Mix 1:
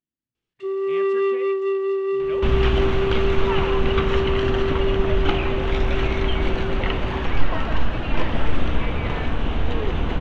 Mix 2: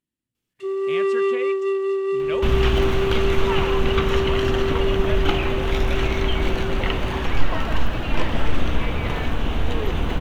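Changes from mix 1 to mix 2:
speech +6.5 dB; master: remove Bessel low-pass 3800 Hz, order 2

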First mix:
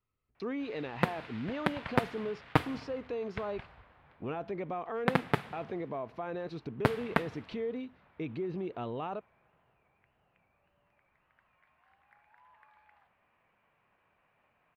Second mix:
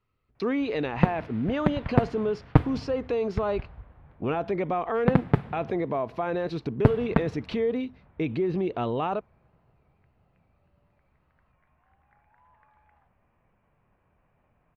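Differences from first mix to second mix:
speech +9.5 dB; background: add tilt -4 dB/oct

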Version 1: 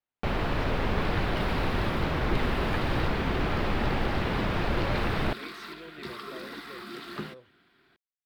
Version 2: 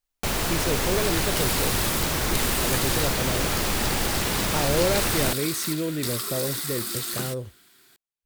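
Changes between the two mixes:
speech: remove band-pass 4700 Hz, Q 0.62; master: remove air absorption 390 m

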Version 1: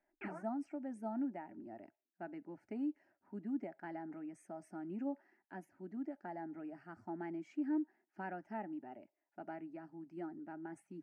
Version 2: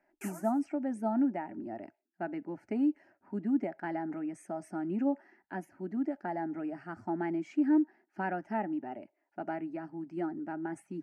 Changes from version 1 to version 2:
speech +10.0 dB; background: remove inverse Chebyshev low-pass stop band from 6600 Hz, stop band 50 dB

